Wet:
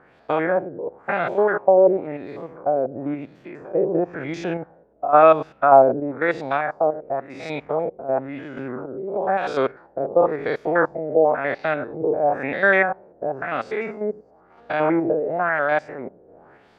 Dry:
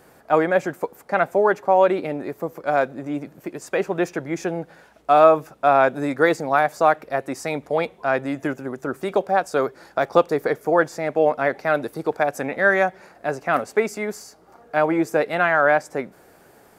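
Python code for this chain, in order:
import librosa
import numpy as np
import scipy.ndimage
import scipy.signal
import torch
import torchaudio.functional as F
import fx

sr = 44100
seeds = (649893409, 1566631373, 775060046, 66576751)

y = fx.spec_steps(x, sr, hold_ms=100)
y = fx.tremolo_random(y, sr, seeds[0], hz=3.5, depth_pct=55)
y = fx.filter_lfo_lowpass(y, sr, shape='sine', hz=0.97, low_hz=460.0, high_hz=3900.0, q=2.2)
y = y * 10.0 ** (2.0 / 20.0)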